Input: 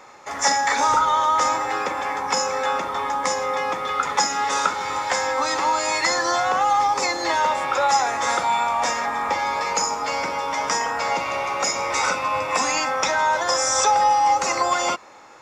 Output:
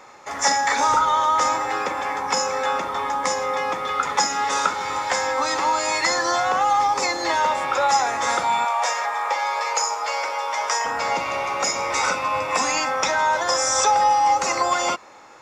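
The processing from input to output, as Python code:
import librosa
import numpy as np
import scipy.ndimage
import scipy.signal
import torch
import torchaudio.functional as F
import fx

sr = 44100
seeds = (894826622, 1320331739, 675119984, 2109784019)

y = fx.highpass(x, sr, hz=470.0, slope=24, at=(8.65, 10.85))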